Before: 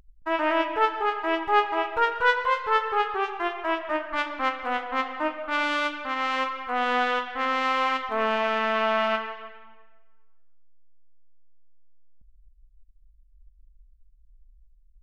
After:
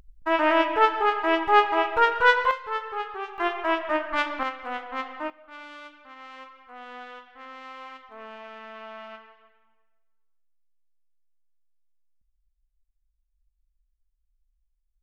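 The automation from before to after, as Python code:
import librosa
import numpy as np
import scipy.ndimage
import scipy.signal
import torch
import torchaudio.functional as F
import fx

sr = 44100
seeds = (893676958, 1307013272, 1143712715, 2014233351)

y = fx.gain(x, sr, db=fx.steps((0.0, 3.0), (2.51, -7.0), (3.38, 2.0), (4.43, -5.0), (5.3, -17.5)))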